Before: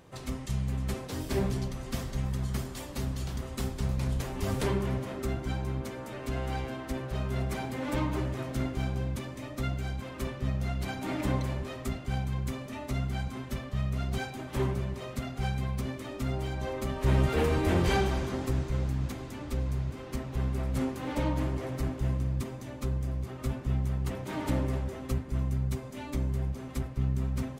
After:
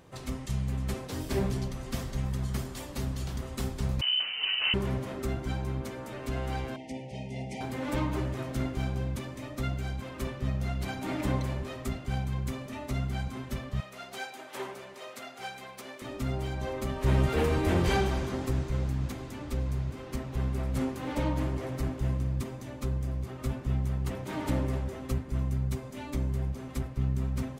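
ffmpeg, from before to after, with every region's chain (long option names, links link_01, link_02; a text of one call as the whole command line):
ffmpeg -i in.wav -filter_complex "[0:a]asettb=1/sr,asplit=3[link_01][link_02][link_03];[link_01]atrim=end=4.014[link_04];[link_02]atrim=start=4.01:end=4.74,asetpts=PTS-STARTPTS,afade=type=in:duration=0.004:curve=qsin,afade=type=out:start_time=0.726:duration=0.004:curve=qsin,asplit=2[link_05][link_06];[link_06]adelay=46,volume=-11.5dB[link_07];[link_05][link_07]amix=inputs=2:normalize=0,atrim=end_sample=32193,lowpass=frequency=2600:width_type=q:width=0.5098,lowpass=frequency=2600:width_type=q:width=0.6013,lowpass=frequency=2600:width_type=q:width=0.9,lowpass=frequency=2600:width_type=q:width=2.563,afreqshift=-3100[link_08];[link_03]atrim=start=4.736[link_09];[link_04][link_08]acrossfade=duration=0.004:curve1=hsin:curve2=qsin[link_10];[link_10][link_09]acrossfade=duration=0.004:curve1=qsin:curve2=hsin,asettb=1/sr,asplit=3[link_11][link_12][link_13];[link_11]atrim=end=6.764[link_14];[link_12]atrim=start=6.76:end=7.61,asetpts=PTS-STARTPTS,afade=type=in:duration=0.004:curve=qsin,afade=type=out:start_time=0.846:duration=0.004:curve=qsin,asuperstop=centerf=1300:order=20:qfactor=1.4,highpass=160,equalizer=frequency=360:width_type=q:width=4:gain=-10,equalizer=frequency=620:width_type=q:width=4:gain=-4,equalizer=frequency=1800:width_type=q:width=4:gain=-4,equalizer=frequency=3900:width_type=q:width=4:gain=-8,equalizer=frequency=7500:width_type=q:width=4:gain=-5,lowpass=frequency=8600:width=0.5412,lowpass=frequency=8600:width=1.3066[link_15];[link_13]atrim=start=7.606[link_16];[link_14][link_15]acrossfade=duration=0.004:curve1=hsin:curve2=qsin[link_17];[link_17][link_16]acrossfade=duration=0.004:curve1=qsin:curve2=hsin,asettb=1/sr,asplit=3[link_18][link_19][link_20];[link_18]atrim=end=13.804[link_21];[link_19]atrim=start=13.8:end=16.02,asetpts=PTS-STARTPTS,afade=type=in:duration=0.004:curve=qsin,afade=type=out:start_time=2.216:duration=0.004:curve=qsin,highpass=540,bandreject=frequency=1100:width=13[link_22];[link_20]atrim=start=16.016[link_23];[link_21][link_22]acrossfade=duration=0.004:curve1=hsin:curve2=qsin[link_24];[link_24][link_23]acrossfade=duration=0.004:curve1=qsin:curve2=hsin" out.wav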